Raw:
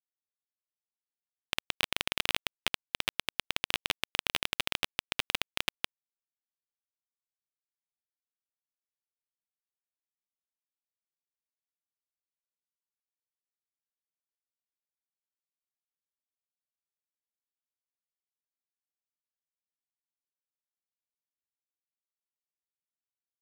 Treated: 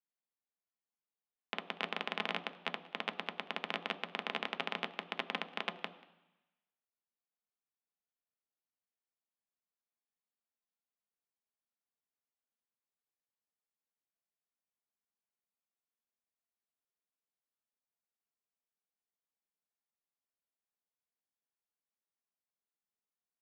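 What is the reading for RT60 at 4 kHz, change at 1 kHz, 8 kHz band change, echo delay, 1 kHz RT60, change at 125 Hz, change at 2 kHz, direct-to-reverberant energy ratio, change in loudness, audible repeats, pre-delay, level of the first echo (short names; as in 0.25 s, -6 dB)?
1.0 s, 0.0 dB, -23.0 dB, 0.186 s, 1.0 s, -5.5 dB, -4.5 dB, 6.5 dB, -6.5 dB, 1, 3 ms, -23.0 dB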